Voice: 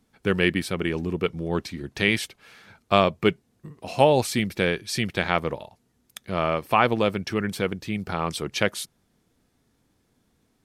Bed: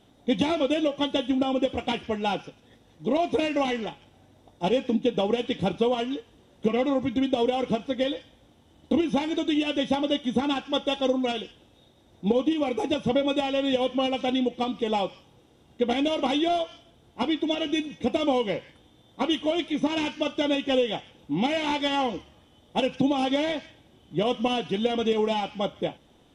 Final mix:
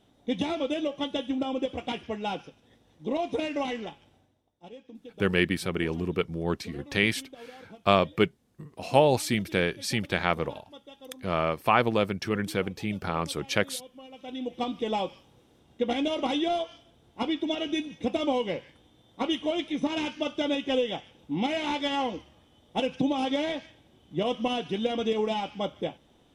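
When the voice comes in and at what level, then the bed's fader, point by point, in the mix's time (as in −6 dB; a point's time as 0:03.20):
4.95 s, −2.5 dB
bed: 0:04.14 −5 dB
0:04.51 −22.5 dB
0:14.05 −22.5 dB
0:14.60 −3 dB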